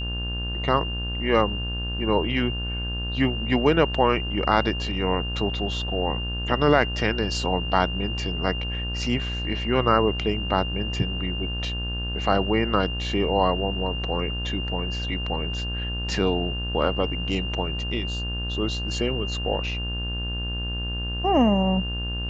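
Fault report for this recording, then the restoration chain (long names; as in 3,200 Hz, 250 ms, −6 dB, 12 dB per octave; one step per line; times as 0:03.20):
mains buzz 60 Hz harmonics 30 −30 dBFS
whistle 2,800 Hz −31 dBFS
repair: notch filter 2,800 Hz, Q 30
hum removal 60 Hz, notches 30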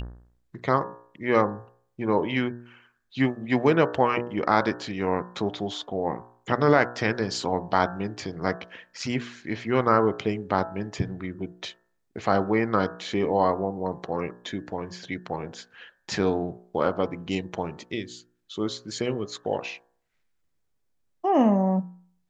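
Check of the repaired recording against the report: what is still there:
none of them is left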